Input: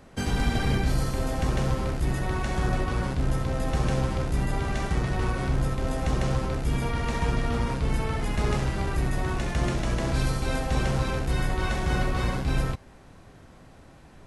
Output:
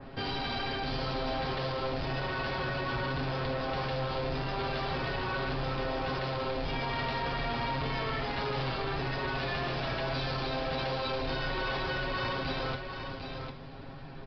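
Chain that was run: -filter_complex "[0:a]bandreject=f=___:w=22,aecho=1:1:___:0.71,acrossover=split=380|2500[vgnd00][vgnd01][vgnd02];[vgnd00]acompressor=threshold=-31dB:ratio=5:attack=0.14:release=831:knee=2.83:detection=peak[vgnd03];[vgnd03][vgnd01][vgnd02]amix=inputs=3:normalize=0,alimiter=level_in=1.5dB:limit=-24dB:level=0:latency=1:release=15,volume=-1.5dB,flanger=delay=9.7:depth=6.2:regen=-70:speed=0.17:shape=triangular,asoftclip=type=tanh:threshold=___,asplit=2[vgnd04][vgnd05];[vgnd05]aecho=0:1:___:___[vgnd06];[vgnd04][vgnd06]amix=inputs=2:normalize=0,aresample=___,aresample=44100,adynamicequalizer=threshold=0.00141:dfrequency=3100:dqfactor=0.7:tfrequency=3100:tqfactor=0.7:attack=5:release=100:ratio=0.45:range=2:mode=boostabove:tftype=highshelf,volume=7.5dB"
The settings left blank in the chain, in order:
2000, 7.4, -36.5dB, 750, 0.447, 11025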